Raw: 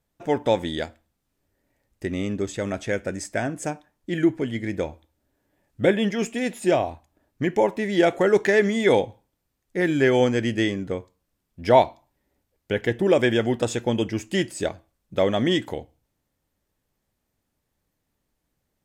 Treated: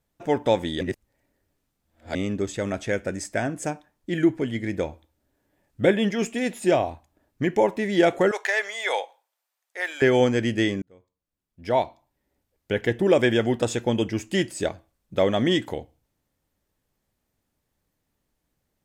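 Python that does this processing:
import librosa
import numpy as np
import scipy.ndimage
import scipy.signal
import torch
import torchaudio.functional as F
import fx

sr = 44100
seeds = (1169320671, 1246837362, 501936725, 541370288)

y = fx.highpass(x, sr, hz=660.0, slope=24, at=(8.31, 10.02))
y = fx.edit(y, sr, fx.reverse_span(start_s=0.81, length_s=1.34),
    fx.fade_in_span(start_s=10.82, length_s=2.0), tone=tone)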